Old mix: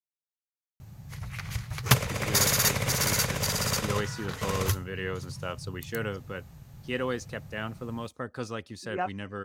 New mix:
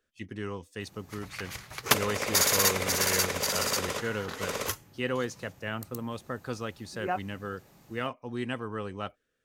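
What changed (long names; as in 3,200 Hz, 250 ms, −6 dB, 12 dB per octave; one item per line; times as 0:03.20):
speech: entry −1.90 s
background: add low shelf with overshoot 200 Hz −13 dB, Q 1.5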